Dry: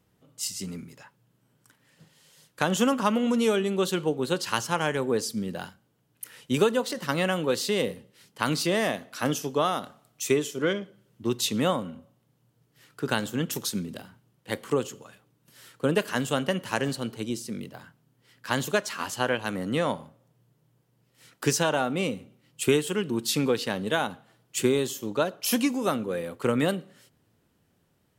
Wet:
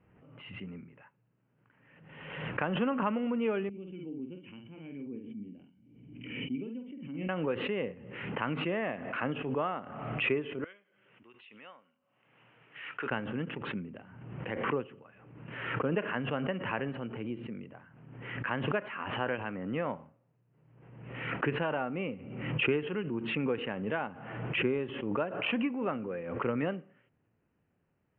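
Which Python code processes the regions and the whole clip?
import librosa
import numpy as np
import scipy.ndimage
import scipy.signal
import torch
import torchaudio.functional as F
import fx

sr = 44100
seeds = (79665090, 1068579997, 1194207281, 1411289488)

y = fx.chain(x, sr, fx.formant_cascade(vowel='i'),
    fx.doubler(ms=49.0, db=-6.0), at=(3.69, 7.29))
y = fx.chain(y, sr, fx.lowpass(hz=7800.0, slope=12),
    fx.differentiator(), at=(10.64, 13.11))
y = scipy.signal.sosfilt(scipy.signal.butter(12, 2800.0, 'lowpass', fs=sr, output='sos'), y)
y = fx.pre_swell(y, sr, db_per_s=44.0)
y = y * 10.0 ** (-7.5 / 20.0)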